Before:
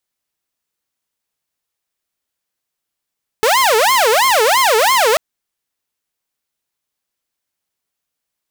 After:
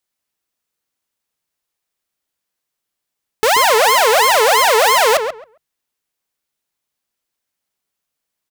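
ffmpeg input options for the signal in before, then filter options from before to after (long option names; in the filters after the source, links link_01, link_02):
-f lavfi -i "aevalsrc='0.422*(2*mod((749.5*t-320.5/(2*PI*3)*sin(2*PI*3*t)),1)-1)':duration=1.74:sample_rate=44100"
-filter_complex "[0:a]bandreject=frequency=50:width_type=h:width=6,bandreject=frequency=100:width_type=h:width=6,bandreject=frequency=150:width_type=h:width=6,asplit=2[link_01][link_02];[link_02]adelay=135,lowpass=frequency=1900:poles=1,volume=-6.5dB,asplit=2[link_03][link_04];[link_04]adelay=135,lowpass=frequency=1900:poles=1,volume=0.17,asplit=2[link_05][link_06];[link_06]adelay=135,lowpass=frequency=1900:poles=1,volume=0.17[link_07];[link_03][link_05][link_07]amix=inputs=3:normalize=0[link_08];[link_01][link_08]amix=inputs=2:normalize=0"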